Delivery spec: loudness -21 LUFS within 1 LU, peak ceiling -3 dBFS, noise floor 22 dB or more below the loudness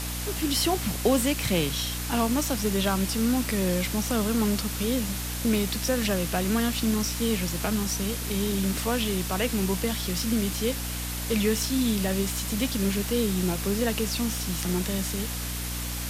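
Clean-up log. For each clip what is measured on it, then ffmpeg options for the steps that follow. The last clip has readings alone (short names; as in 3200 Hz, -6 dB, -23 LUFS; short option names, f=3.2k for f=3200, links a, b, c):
hum 60 Hz; harmonics up to 300 Hz; hum level -32 dBFS; noise floor -32 dBFS; noise floor target -49 dBFS; loudness -26.5 LUFS; peak -10.5 dBFS; loudness target -21.0 LUFS
-> -af "bandreject=f=60:t=h:w=6,bandreject=f=120:t=h:w=6,bandreject=f=180:t=h:w=6,bandreject=f=240:t=h:w=6,bandreject=f=300:t=h:w=6"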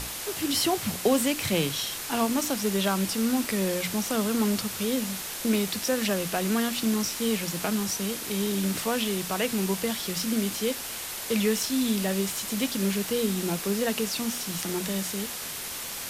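hum none; noise floor -36 dBFS; noise floor target -49 dBFS
-> -af "afftdn=nr=13:nf=-36"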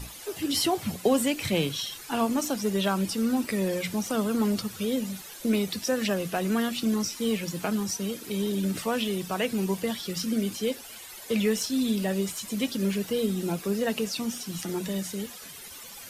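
noise floor -44 dBFS; noise floor target -51 dBFS
-> -af "afftdn=nr=7:nf=-44"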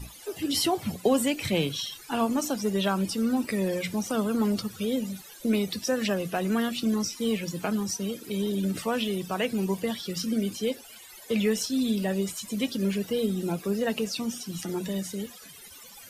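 noise floor -48 dBFS; noise floor target -51 dBFS
-> -af "afftdn=nr=6:nf=-48"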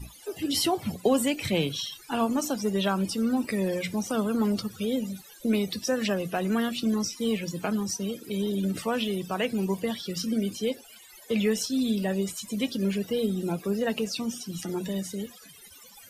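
noise floor -51 dBFS; loudness -28.5 LUFS; peak -11.5 dBFS; loudness target -21.0 LUFS
-> -af "volume=7.5dB"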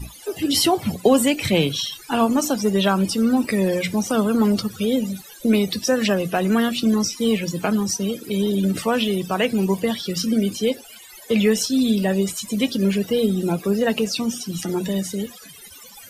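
loudness -21.0 LUFS; peak -4.0 dBFS; noise floor -43 dBFS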